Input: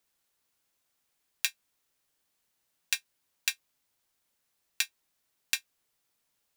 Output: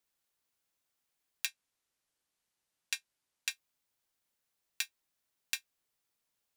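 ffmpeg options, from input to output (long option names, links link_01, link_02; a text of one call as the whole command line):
ffmpeg -i in.wav -filter_complex "[0:a]asettb=1/sr,asplit=3[link_01][link_02][link_03];[link_01]atrim=end=1.464[link_04];[link_02]atrim=start=1.46:end=3.51,asetpts=PTS-STARTPTS,afade=type=in:duration=0.004:curve=qsin,afade=type=out:start_time=2.046:duration=0.004:curve=qsin,lowpass=12000[link_05];[link_03]atrim=start=3.506[link_06];[link_04][link_05]acrossfade=duration=0.004:curve1=hsin:curve2=qsin[link_07];[link_07][link_06]acrossfade=duration=0.004:curve1=qsin:curve2=hsin,volume=-6dB" out.wav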